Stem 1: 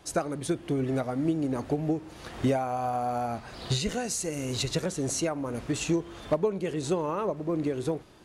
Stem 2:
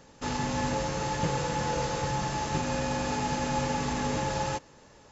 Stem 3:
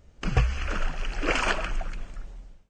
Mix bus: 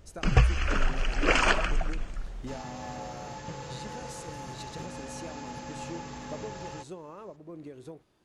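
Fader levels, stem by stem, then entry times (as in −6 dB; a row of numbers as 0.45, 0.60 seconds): −15.0, −11.0, +2.0 decibels; 0.00, 2.25, 0.00 seconds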